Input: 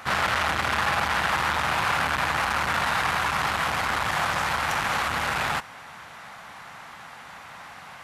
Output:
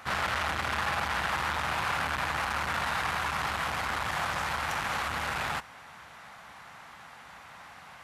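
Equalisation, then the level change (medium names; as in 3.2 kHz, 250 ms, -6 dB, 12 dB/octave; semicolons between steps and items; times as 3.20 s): peaking EQ 65 Hz +5.5 dB 0.5 oct; -6.0 dB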